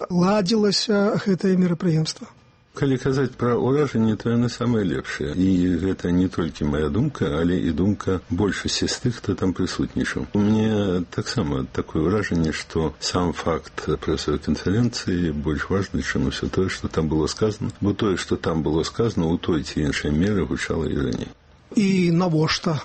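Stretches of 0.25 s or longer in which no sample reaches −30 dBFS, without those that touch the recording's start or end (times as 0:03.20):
0:02.24–0:02.77
0:21.27–0:21.72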